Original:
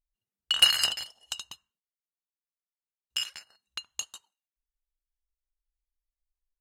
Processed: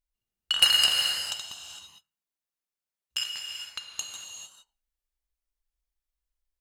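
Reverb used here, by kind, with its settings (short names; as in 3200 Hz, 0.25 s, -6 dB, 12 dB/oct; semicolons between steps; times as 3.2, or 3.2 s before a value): non-linear reverb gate 0.48 s flat, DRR 1.5 dB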